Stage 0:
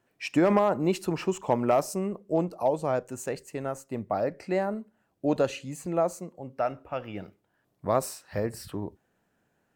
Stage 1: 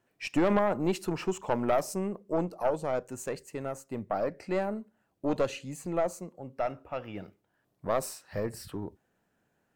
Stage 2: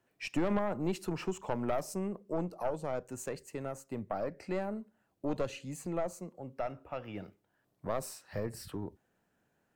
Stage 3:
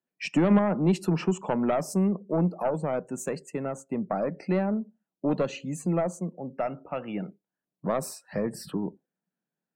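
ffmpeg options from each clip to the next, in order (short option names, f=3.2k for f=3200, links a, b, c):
-af "aeval=exprs='(tanh(7.08*val(0)+0.5)-tanh(0.5))/7.08':c=same"
-filter_complex "[0:a]acrossover=split=190[a][b];[b]acompressor=threshold=-38dB:ratio=1.5[c];[a][c]amix=inputs=2:normalize=0,volume=-1.5dB"
-af "afftdn=nr=23:nf=-57,lowshelf=f=120:t=q:w=3:g=-12,volume=6.5dB"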